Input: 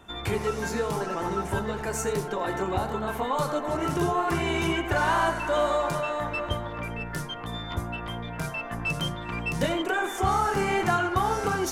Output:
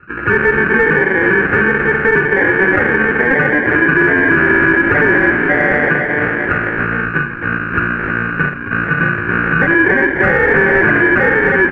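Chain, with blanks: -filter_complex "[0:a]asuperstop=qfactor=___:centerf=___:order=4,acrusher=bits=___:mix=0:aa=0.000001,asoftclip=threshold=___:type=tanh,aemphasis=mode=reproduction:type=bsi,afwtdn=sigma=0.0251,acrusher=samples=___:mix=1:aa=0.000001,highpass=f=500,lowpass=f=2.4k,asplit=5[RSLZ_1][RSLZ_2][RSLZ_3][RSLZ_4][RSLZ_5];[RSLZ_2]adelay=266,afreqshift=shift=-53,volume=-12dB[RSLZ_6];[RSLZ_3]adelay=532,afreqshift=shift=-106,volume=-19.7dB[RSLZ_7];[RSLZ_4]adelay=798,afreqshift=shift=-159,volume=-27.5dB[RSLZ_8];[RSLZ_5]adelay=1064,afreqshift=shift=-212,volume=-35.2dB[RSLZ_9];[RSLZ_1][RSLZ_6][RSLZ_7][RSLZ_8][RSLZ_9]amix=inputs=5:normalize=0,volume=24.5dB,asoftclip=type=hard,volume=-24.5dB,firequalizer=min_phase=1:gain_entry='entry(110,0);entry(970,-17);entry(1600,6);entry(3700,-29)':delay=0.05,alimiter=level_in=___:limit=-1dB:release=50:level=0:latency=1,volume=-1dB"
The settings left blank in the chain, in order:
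3.5, 650, 10, -18dB, 33, 28dB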